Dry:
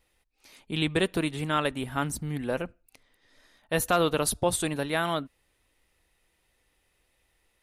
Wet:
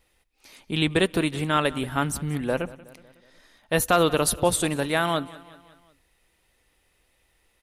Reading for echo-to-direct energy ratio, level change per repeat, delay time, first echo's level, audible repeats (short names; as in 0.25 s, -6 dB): -18.0 dB, -5.5 dB, 0.184 s, -19.5 dB, 3